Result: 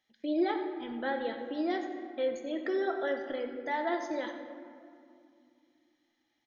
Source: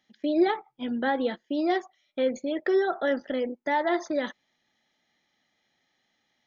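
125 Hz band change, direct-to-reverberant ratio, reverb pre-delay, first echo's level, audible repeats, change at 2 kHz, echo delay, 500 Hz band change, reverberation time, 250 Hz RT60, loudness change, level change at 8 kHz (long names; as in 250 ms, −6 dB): can't be measured, 4.0 dB, 6 ms, −13.5 dB, 1, −5.5 dB, 92 ms, −6.0 dB, 2.4 s, 3.4 s, −6.0 dB, can't be measured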